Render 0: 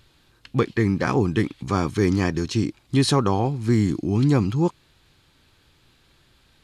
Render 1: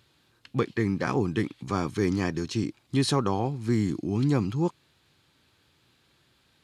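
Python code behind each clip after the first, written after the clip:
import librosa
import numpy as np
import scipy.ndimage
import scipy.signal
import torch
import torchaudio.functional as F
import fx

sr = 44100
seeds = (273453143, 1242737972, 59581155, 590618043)

y = scipy.signal.sosfilt(scipy.signal.butter(2, 94.0, 'highpass', fs=sr, output='sos'), x)
y = y * 10.0 ** (-5.0 / 20.0)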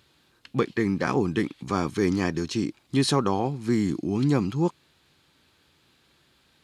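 y = fx.peak_eq(x, sr, hz=110.0, db=-8.5, octaves=0.35)
y = y * 10.0 ** (2.5 / 20.0)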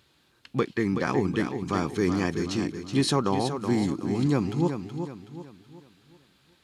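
y = fx.echo_feedback(x, sr, ms=374, feedback_pct=40, wet_db=-8.0)
y = y * 10.0 ** (-1.5 / 20.0)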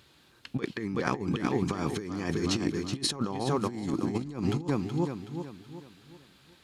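y = fx.over_compress(x, sr, threshold_db=-29.0, ratio=-0.5)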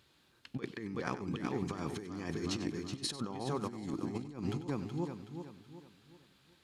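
y = x + 10.0 ** (-14.0 / 20.0) * np.pad(x, (int(95 * sr / 1000.0), 0))[:len(x)]
y = y * 10.0 ** (-8.0 / 20.0)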